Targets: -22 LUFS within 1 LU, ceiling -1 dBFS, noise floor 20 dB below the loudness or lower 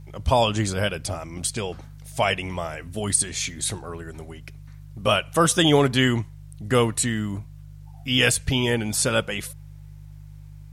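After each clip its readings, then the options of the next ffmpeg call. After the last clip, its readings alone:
hum 50 Hz; highest harmonic 150 Hz; hum level -39 dBFS; loudness -23.0 LUFS; peak level -5.5 dBFS; loudness target -22.0 LUFS
-> -af "bandreject=f=50:t=h:w=4,bandreject=f=100:t=h:w=4,bandreject=f=150:t=h:w=4"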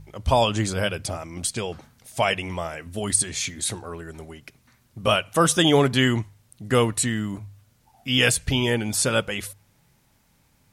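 hum not found; loudness -23.0 LUFS; peak level -5.5 dBFS; loudness target -22.0 LUFS
-> -af "volume=1.12"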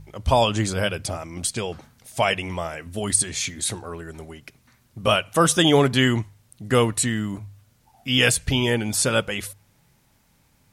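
loudness -22.0 LUFS; peak level -4.5 dBFS; noise floor -62 dBFS

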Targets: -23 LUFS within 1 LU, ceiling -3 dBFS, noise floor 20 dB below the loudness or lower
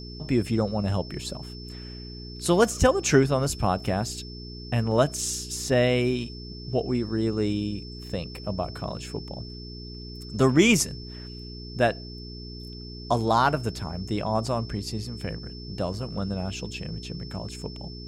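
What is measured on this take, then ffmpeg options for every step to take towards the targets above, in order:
hum 60 Hz; highest harmonic 420 Hz; hum level -38 dBFS; steady tone 5.3 kHz; tone level -43 dBFS; loudness -26.5 LUFS; peak level -5.5 dBFS; loudness target -23.0 LUFS
-> -af "bandreject=f=60:t=h:w=4,bandreject=f=120:t=h:w=4,bandreject=f=180:t=h:w=4,bandreject=f=240:t=h:w=4,bandreject=f=300:t=h:w=4,bandreject=f=360:t=h:w=4,bandreject=f=420:t=h:w=4"
-af "bandreject=f=5300:w=30"
-af "volume=1.5,alimiter=limit=0.708:level=0:latency=1"

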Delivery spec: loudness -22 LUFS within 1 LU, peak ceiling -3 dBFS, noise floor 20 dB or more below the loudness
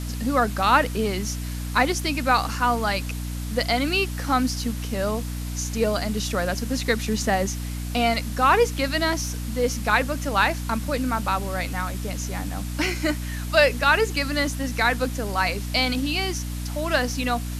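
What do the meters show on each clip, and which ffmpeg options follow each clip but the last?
hum 60 Hz; highest harmonic 300 Hz; hum level -28 dBFS; noise floor -30 dBFS; noise floor target -44 dBFS; loudness -23.5 LUFS; peak level -3.5 dBFS; loudness target -22.0 LUFS
-> -af "bandreject=f=60:t=h:w=6,bandreject=f=120:t=h:w=6,bandreject=f=180:t=h:w=6,bandreject=f=240:t=h:w=6,bandreject=f=300:t=h:w=6"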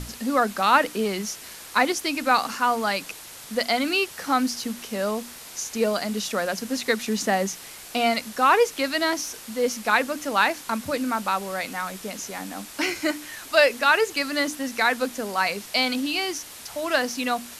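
hum not found; noise floor -42 dBFS; noise floor target -44 dBFS
-> -af "afftdn=nr=6:nf=-42"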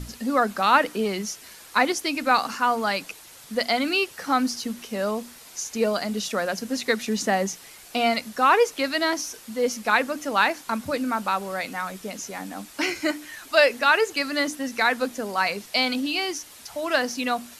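noise floor -47 dBFS; loudness -24.0 LUFS; peak level -4.0 dBFS; loudness target -22.0 LUFS
-> -af "volume=1.26,alimiter=limit=0.708:level=0:latency=1"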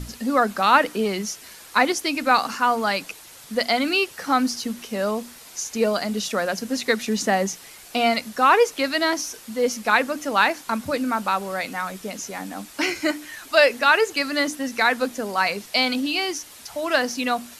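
loudness -22.5 LUFS; peak level -3.0 dBFS; noise floor -45 dBFS

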